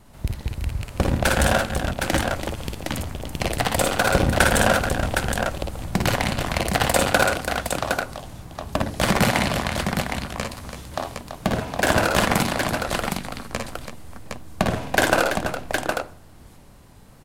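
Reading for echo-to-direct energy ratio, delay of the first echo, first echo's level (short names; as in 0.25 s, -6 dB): -0.5 dB, 51 ms, -6.0 dB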